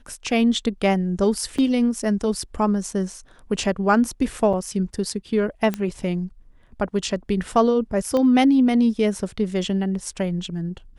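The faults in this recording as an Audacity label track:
1.580000	1.580000	drop-out 4.9 ms
4.530000	4.540000	drop-out 5.1 ms
5.740000	5.740000	click −12 dBFS
8.170000	8.170000	click −13 dBFS

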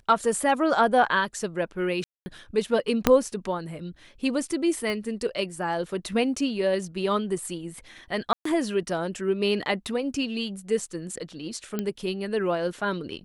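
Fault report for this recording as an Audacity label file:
2.040000	2.260000	drop-out 220 ms
3.070000	3.070000	click −3 dBFS
4.900000	4.900000	click −18 dBFS
8.330000	8.450000	drop-out 124 ms
11.790000	11.790000	click −14 dBFS

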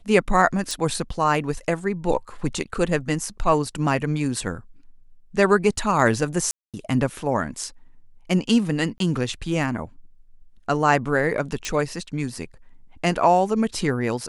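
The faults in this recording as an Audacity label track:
0.710000	0.710000	click
6.510000	6.740000	drop-out 227 ms
8.980000	9.000000	drop-out 22 ms
11.650000	11.650000	click −14 dBFS

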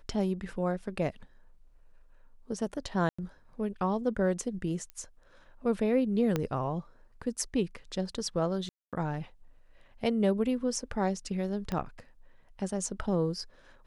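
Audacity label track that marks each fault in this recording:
3.090000	3.190000	drop-out 95 ms
4.900000	4.900000	click −27 dBFS
6.360000	6.360000	click −15 dBFS
8.690000	8.930000	drop-out 237 ms
11.720000	11.720000	click −20 dBFS

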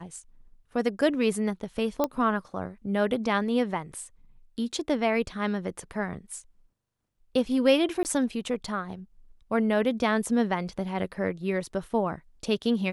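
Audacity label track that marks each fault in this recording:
2.040000	2.040000	click −12 dBFS
8.030000	8.050000	drop-out 19 ms

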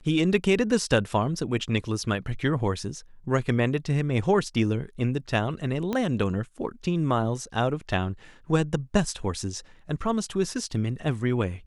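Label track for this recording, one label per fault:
5.930000	5.930000	click −15 dBFS

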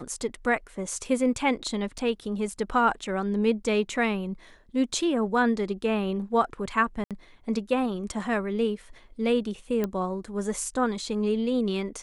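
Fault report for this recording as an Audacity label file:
1.980000	1.980000	drop-out 4.6 ms
7.040000	7.110000	drop-out 67 ms
9.840000	9.840000	click −15 dBFS

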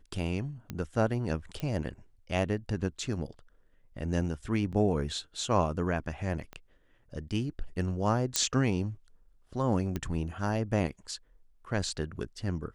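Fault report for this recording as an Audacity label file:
0.700000	0.700000	click −22 dBFS
1.600000	1.600000	click −22 dBFS
4.720000	4.730000	drop-out 6.8 ms
6.530000	6.530000	click −28 dBFS
8.360000	8.360000	click −9 dBFS
9.960000	9.960000	click −19 dBFS

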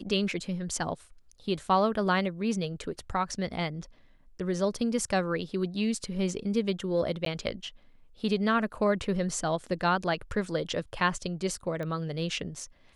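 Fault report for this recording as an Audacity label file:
7.250000	7.260000	drop-out 13 ms
11.830000	11.830000	click −24 dBFS

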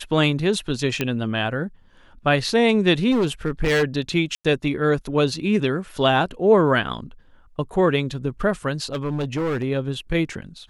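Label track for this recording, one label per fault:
1.010000	1.010000	click −8 dBFS
3.110000	3.840000	clipping −16 dBFS
4.350000	4.450000	drop-out 96 ms
8.920000	9.640000	clipping −20.5 dBFS

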